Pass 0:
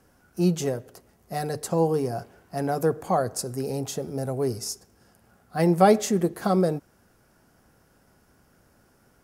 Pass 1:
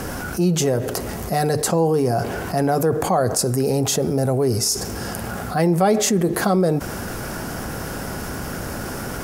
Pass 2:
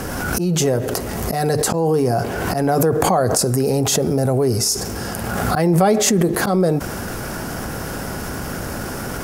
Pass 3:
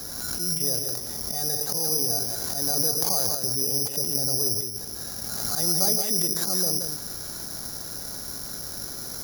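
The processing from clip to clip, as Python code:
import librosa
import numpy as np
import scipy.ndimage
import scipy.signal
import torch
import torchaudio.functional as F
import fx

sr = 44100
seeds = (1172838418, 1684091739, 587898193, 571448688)

y1 = fx.env_flatten(x, sr, amount_pct=70)
y1 = F.gain(torch.from_numpy(y1), -1.5).numpy()
y2 = fx.auto_swell(y1, sr, attack_ms=148.0)
y2 = fx.pre_swell(y2, sr, db_per_s=24.0)
y2 = F.gain(torch.from_numpy(y2), 1.5).numpy()
y3 = y2 + 10.0 ** (-6.5 / 20.0) * np.pad(y2, (int(175 * sr / 1000.0), 0))[:len(y2)]
y3 = (np.kron(scipy.signal.resample_poly(y3, 1, 8), np.eye(8)[0]) * 8)[:len(y3)]
y3 = F.gain(torch.from_numpy(y3), -17.5).numpy()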